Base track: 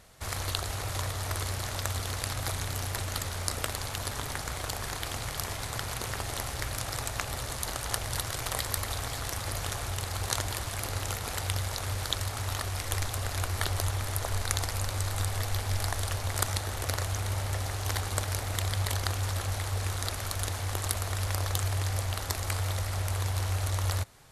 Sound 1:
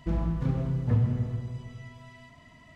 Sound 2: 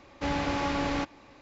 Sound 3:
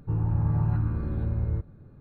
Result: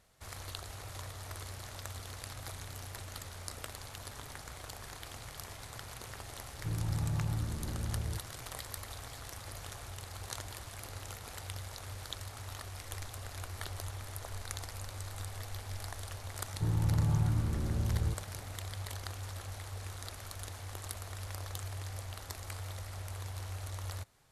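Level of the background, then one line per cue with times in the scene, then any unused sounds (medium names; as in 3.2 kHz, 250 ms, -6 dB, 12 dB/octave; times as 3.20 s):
base track -11.5 dB
6.57 s: add 3 -9 dB
16.53 s: add 3 -4.5 dB
not used: 1, 2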